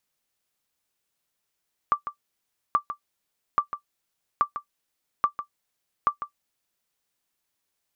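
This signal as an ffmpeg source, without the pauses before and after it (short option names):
-f lavfi -i "aevalsrc='0.282*(sin(2*PI*1170*mod(t,0.83))*exp(-6.91*mod(t,0.83)/0.1)+0.282*sin(2*PI*1170*max(mod(t,0.83)-0.15,0))*exp(-6.91*max(mod(t,0.83)-0.15,0)/0.1))':d=4.98:s=44100"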